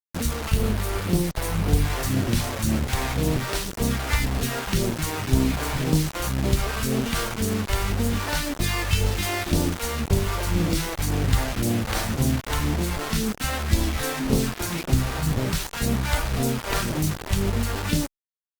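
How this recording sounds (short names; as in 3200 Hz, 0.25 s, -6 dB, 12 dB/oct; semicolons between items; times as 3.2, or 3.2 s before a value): phasing stages 2, 1.9 Hz, lowest notch 170–1900 Hz; a quantiser's noise floor 6-bit, dither none; Opus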